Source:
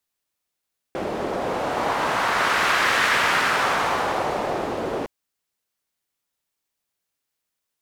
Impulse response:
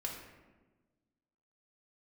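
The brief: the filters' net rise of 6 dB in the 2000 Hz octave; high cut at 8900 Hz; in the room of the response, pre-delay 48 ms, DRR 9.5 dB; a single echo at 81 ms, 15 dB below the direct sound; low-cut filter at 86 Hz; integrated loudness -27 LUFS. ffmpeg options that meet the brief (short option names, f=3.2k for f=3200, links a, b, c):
-filter_complex "[0:a]highpass=86,lowpass=8.9k,equalizer=f=2k:t=o:g=7.5,aecho=1:1:81:0.178,asplit=2[a][b];[1:a]atrim=start_sample=2205,adelay=48[c];[b][c]afir=irnorm=-1:irlink=0,volume=-10dB[d];[a][d]amix=inputs=2:normalize=0,volume=-10dB"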